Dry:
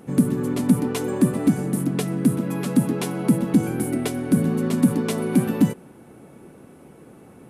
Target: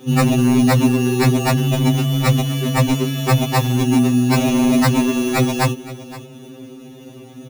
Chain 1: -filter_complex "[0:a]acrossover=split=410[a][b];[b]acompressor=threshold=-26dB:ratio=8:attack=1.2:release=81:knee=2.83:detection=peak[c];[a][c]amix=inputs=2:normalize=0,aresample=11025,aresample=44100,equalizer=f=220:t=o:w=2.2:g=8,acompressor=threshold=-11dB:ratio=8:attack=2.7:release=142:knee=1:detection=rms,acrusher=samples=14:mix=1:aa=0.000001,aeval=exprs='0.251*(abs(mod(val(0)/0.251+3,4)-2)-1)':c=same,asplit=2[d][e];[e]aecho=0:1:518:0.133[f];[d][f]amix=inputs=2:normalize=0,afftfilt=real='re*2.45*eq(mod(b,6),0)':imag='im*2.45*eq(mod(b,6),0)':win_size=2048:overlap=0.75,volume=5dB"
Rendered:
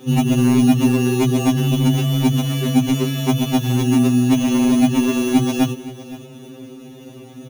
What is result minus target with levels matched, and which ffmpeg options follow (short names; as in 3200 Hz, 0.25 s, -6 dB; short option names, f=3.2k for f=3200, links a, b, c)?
compressor: peak gain reduction +10 dB
-filter_complex "[0:a]acrossover=split=410[a][b];[b]acompressor=threshold=-26dB:ratio=8:attack=1.2:release=81:knee=2.83:detection=peak[c];[a][c]amix=inputs=2:normalize=0,aresample=11025,aresample=44100,equalizer=f=220:t=o:w=2.2:g=8,acrusher=samples=14:mix=1:aa=0.000001,aeval=exprs='0.251*(abs(mod(val(0)/0.251+3,4)-2)-1)':c=same,asplit=2[d][e];[e]aecho=0:1:518:0.133[f];[d][f]amix=inputs=2:normalize=0,afftfilt=real='re*2.45*eq(mod(b,6),0)':imag='im*2.45*eq(mod(b,6),0)':win_size=2048:overlap=0.75,volume=5dB"